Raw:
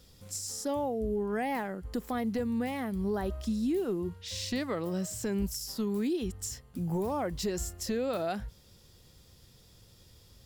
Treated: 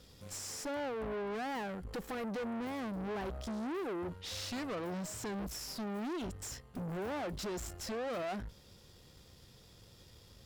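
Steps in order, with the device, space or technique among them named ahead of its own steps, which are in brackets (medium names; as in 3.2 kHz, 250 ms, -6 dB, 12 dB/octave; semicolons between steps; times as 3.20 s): 1.87–2.45 s: comb 6.1 ms, depth 53%; tube preamp driven hard (valve stage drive 41 dB, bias 0.6; bass shelf 170 Hz -5 dB; treble shelf 5.9 kHz -8 dB); trim +5.5 dB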